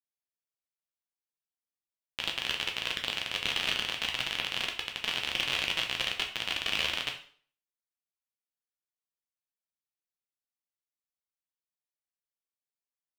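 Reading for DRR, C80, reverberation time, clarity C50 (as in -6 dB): 1.5 dB, 13.0 dB, 0.50 s, 9.0 dB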